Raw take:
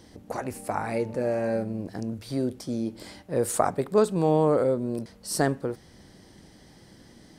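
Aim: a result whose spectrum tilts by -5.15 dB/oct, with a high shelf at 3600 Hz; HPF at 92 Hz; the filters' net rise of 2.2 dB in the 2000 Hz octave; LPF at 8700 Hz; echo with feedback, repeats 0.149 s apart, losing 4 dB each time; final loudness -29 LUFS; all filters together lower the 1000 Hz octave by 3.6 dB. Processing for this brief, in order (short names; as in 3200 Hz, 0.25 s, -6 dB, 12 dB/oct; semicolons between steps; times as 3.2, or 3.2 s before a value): HPF 92 Hz; LPF 8700 Hz; bell 1000 Hz -6.5 dB; bell 2000 Hz +4 dB; high shelf 3600 Hz +5 dB; feedback echo 0.149 s, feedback 63%, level -4 dB; gain -3 dB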